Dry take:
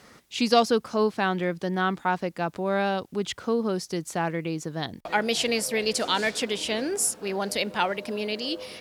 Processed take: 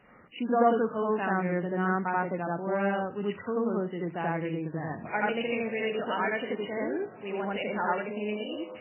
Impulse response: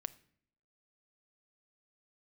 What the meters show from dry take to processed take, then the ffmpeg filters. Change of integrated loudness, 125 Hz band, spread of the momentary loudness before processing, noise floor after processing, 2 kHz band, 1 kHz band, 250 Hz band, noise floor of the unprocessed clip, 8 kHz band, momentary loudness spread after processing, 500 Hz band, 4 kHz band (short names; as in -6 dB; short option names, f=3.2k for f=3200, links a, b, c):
-3.5 dB, -1.0 dB, 7 LU, -47 dBFS, -3.0 dB, -2.0 dB, -2.0 dB, -54 dBFS, under -40 dB, 7 LU, -2.5 dB, -14.5 dB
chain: -filter_complex "[0:a]asplit=2[a][b];[b]lowpass=f=2.2k:w=0.5412,lowpass=f=2.2k:w=1.3066[c];[1:a]atrim=start_sample=2205,adelay=85[d];[c][d]afir=irnorm=-1:irlink=0,volume=5dB[e];[a][e]amix=inputs=2:normalize=0,volume=-6.5dB" -ar 8000 -c:a libmp3lame -b:a 8k